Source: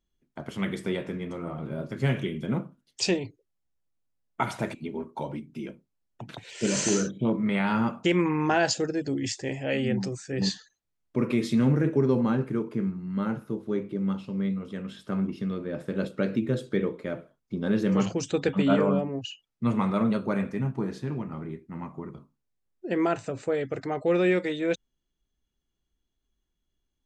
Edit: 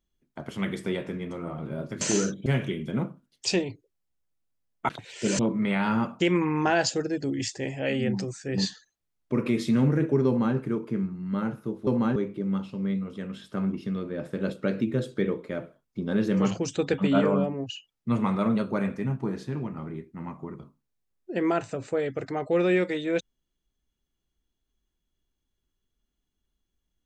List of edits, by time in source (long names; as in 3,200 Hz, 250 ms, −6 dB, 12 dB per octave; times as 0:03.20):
0:04.44–0:06.28: remove
0:06.78–0:07.23: move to 0:02.01
0:12.11–0:12.40: duplicate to 0:13.71